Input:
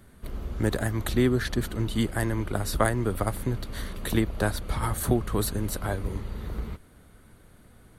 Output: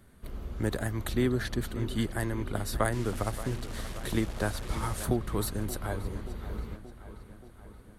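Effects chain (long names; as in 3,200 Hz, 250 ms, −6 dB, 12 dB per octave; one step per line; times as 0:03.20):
0:02.92–0:05.04: linear delta modulator 64 kbit/s, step −33 dBFS
feedback echo with a low-pass in the loop 578 ms, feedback 63%, low-pass 5,000 Hz, level −14 dB
level −4.5 dB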